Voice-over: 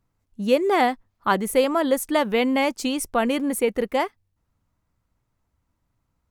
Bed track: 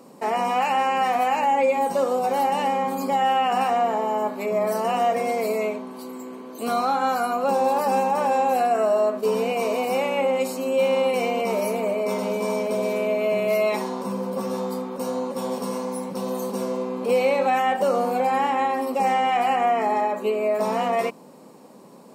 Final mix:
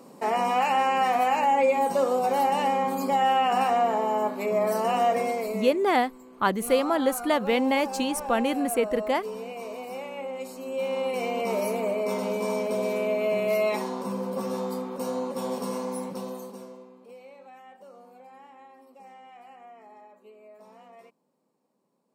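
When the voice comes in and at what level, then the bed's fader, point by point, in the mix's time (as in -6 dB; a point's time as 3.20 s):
5.15 s, -3.0 dB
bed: 5.20 s -1.5 dB
5.85 s -13 dB
10.30 s -13 dB
11.54 s -3 dB
16.06 s -3 dB
17.18 s -28 dB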